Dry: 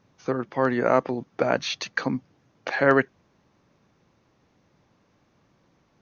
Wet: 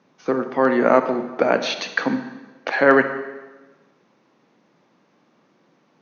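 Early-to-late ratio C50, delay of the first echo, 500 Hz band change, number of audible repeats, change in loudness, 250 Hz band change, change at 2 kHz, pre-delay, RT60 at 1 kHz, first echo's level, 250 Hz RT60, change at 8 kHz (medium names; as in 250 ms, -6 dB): 10.0 dB, no echo, +5.5 dB, no echo, +5.0 dB, +5.5 dB, +5.0 dB, 28 ms, 1.2 s, no echo, 1.2 s, no reading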